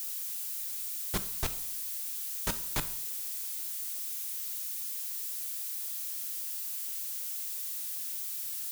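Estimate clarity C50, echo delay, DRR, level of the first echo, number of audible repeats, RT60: 14.0 dB, no echo audible, 10.5 dB, no echo audible, no echo audible, 0.70 s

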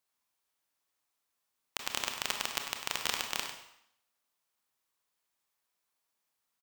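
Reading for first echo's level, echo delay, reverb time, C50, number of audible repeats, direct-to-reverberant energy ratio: −9.5 dB, 99 ms, 0.70 s, 4.5 dB, 1, 3.0 dB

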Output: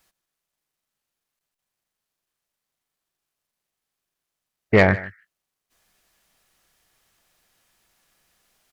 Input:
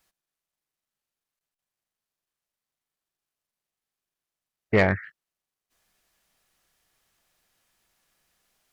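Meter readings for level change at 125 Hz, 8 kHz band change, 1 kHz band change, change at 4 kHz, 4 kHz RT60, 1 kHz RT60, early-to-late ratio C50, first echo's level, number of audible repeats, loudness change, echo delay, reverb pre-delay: +5.0 dB, can't be measured, +5.0 dB, +5.0 dB, no reverb audible, no reverb audible, no reverb audible, −20.0 dB, 1, +5.0 dB, 153 ms, no reverb audible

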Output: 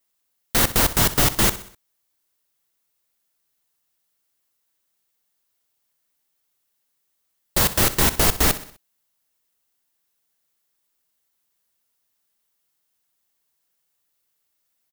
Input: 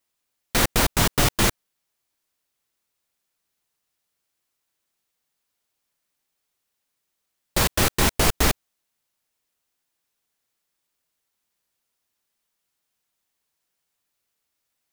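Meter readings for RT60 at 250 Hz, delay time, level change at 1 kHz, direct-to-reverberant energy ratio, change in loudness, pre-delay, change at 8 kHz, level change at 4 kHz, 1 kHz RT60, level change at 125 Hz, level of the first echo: no reverb audible, 63 ms, 0.0 dB, no reverb audible, +2.5 dB, no reverb audible, +2.5 dB, +1.0 dB, no reverb audible, 0.0 dB, −15.0 dB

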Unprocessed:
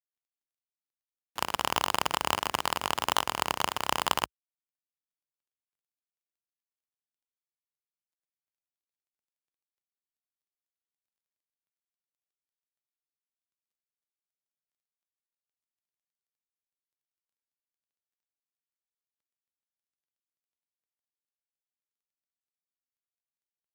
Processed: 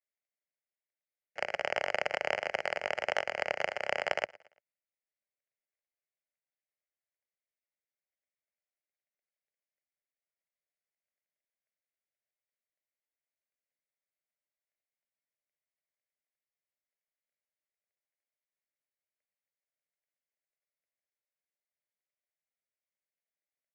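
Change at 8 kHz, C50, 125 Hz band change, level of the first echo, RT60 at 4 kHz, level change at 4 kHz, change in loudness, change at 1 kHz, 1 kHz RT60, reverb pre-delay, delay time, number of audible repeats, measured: −17.0 dB, no reverb audible, −12.0 dB, −23.0 dB, no reverb audible, −9.5 dB, −4.0 dB, −8.0 dB, no reverb audible, no reverb audible, 114 ms, 2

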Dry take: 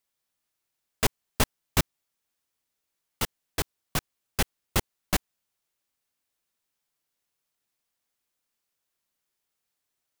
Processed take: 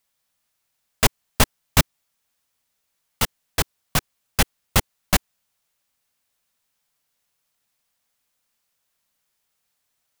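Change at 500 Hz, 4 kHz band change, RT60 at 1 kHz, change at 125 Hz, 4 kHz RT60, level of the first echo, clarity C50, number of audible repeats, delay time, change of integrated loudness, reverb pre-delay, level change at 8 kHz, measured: +5.5 dB, +7.5 dB, no reverb audible, +7.5 dB, no reverb audible, no echo audible, no reverb audible, no echo audible, no echo audible, +7.0 dB, no reverb audible, +7.5 dB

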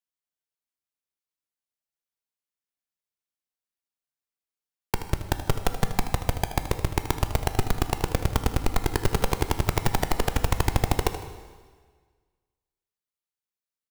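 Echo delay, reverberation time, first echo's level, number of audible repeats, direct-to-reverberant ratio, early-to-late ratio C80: 78 ms, 1.6 s, −12.5 dB, 2, 7.0 dB, 11.5 dB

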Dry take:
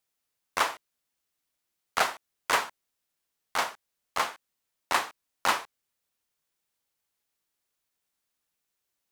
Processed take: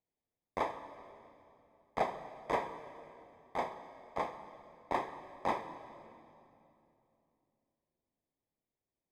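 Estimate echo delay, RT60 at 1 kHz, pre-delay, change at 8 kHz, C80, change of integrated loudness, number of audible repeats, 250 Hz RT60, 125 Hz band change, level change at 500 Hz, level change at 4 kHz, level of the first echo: no echo audible, 2.7 s, 23 ms, below −20 dB, 11.0 dB, −9.5 dB, no echo audible, 3.7 s, +2.0 dB, −0.5 dB, −20.0 dB, no echo audible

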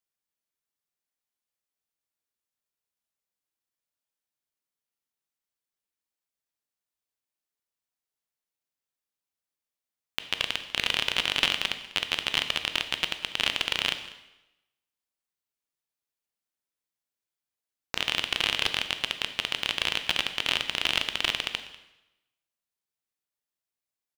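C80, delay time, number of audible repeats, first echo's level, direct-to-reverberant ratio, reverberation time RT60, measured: 12.0 dB, 195 ms, 1, −19.5 dB, 8.0 dB, 0.95 s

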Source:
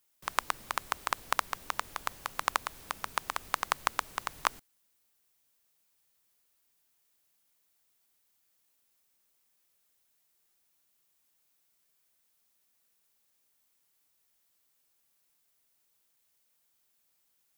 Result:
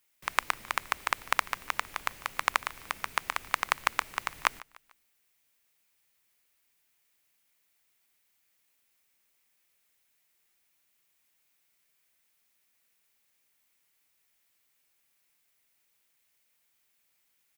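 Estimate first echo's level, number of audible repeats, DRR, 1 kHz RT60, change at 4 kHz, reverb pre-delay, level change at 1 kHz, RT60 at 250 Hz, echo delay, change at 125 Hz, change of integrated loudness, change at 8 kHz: −22.0 dB, 2, no reverb audible, no reverb audible, +2.5 dB, no reverb audible, +1.5 dB, no reverb audible, 148 ms, 0.0 dB, +2.5 dB, +0.5 dB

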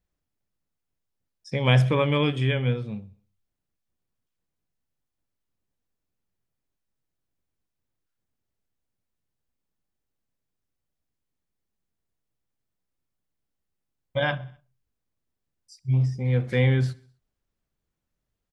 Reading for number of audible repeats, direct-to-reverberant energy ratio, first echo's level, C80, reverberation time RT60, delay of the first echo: 3, no reverb audible, −23.0 dB, no reverb audible, no reverb audible, 64 ms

